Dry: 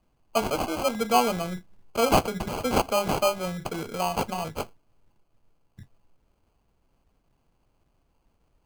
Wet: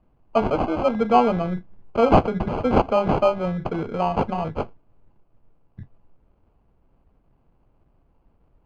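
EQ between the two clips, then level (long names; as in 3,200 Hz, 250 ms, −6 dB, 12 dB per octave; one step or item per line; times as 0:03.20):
head-to-tape spacing loss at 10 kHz 42 dB
+8.0 dB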